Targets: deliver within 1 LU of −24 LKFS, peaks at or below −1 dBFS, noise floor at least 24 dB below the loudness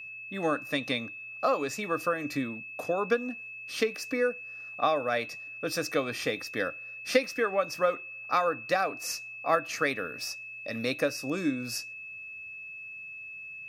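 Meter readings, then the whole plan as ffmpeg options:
interfering tone 2,600 Hz; level of the tone −40 dBFS; integrated loudness −31.0 LKFS; sample peak −8.5 dBFS; target loudness −24.0 LKFS
→ -af "bandreject=frequency=2600:width=30"
-af "volume=7dB"

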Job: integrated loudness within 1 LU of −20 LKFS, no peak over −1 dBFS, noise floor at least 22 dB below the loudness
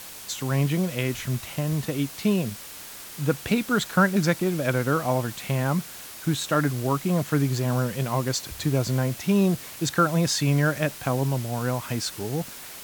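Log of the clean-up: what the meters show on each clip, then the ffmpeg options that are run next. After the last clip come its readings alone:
background noise floor −41 dBFS; target noise floor −47 dBFS; integrated loudness −25.0 LKFS; sample peak −8.0 dBFS; target loudness −20.0 LKFS
→ -af "afftdn=noise_reduction=6:noise_floor=-41"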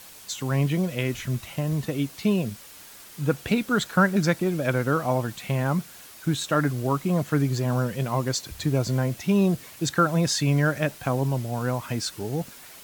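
background noise floor −46 dBFS; target noise floor −48 dBFS
→ -af "afftdn=noise_reduction=6:noise_floor=-46"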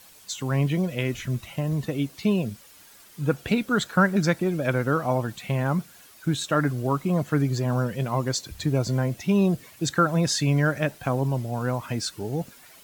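background noise floor −51 dBFS; integrated loudness −25.5 LKFS; sample peak −8.0 dBFS; target loudness −20.0 LKFS
→ -af "volume=5.5dB"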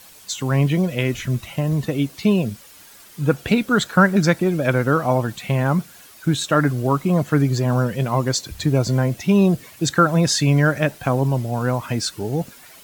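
integrated loudness −20.0 LKFS; sample peak −2.5 dBFS; background noise floor −46 dBFS

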